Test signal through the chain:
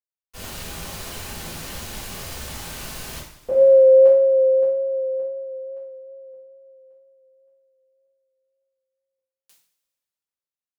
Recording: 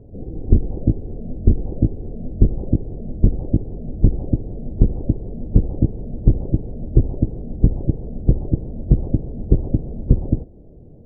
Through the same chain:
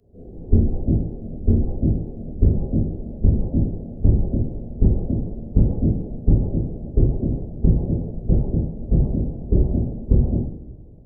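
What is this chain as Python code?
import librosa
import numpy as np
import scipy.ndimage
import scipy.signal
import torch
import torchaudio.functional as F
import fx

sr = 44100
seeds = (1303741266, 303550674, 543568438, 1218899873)

y = fx.rev_double_slope(x, sr, seeds[0], early_s=0.57, late_s=3.4, knee_db=-18, drr_db=-9.5)
y = fx.wow_flutter(y, sr, seeds[1], rate_hz=2.1, depth_cents=24.0)
y = fx.band_widen(y, sr, depth_pct=40)
y = F.gain(torch.from_numpy(y), -9.0).numpy()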